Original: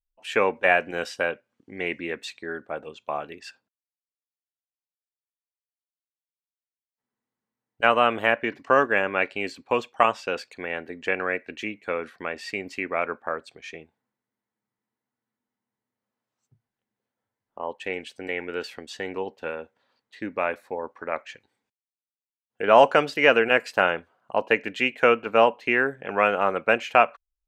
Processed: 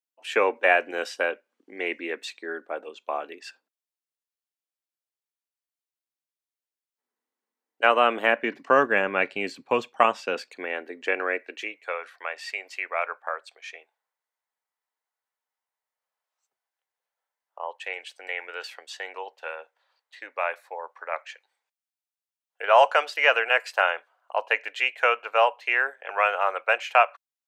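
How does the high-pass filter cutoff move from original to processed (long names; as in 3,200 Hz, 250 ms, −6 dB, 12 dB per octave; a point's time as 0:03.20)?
high-pass filter 24 dB per octave
0:07.84 290 Hz
0:09.05 120 Hz
0:09.81 120 Hz
0:10.80 290 Hz
0:11.34 290 Hz
0:12.00 600 Hz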